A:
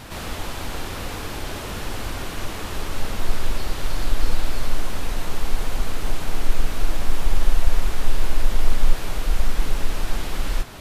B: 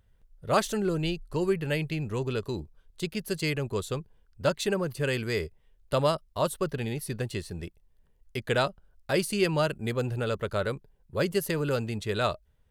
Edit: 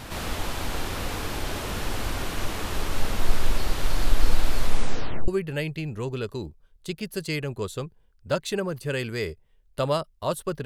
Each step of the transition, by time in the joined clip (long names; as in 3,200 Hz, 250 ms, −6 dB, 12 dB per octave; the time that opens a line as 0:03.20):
A
0:04.62: tape stop 0.66 s
0:05.28: continue with B from 0:01.42